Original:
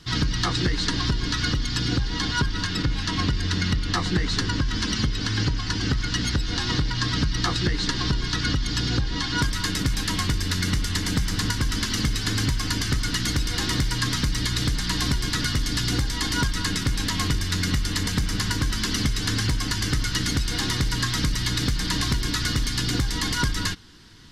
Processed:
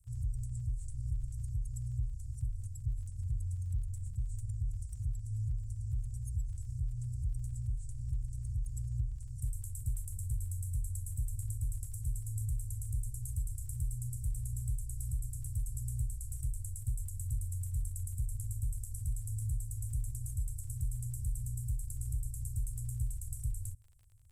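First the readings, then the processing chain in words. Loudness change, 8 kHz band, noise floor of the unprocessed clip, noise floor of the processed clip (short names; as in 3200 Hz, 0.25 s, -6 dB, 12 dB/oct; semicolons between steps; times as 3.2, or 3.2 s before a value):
-14.5 dB, -16.0 dB, -29 dBFS, -43 dBFS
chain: Chebyshev band-stop 120–7900 Hz, order 5; crackle 37/s -46 dBFS; gain -8.5 dB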